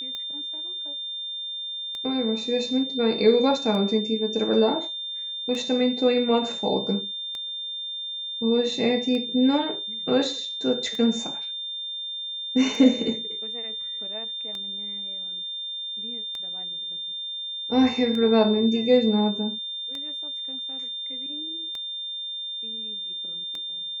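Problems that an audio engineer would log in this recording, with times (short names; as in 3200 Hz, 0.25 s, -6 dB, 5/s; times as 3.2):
tick 33 1/3 rpm -20 dBFS
tone 3600 Hz -30 dBFS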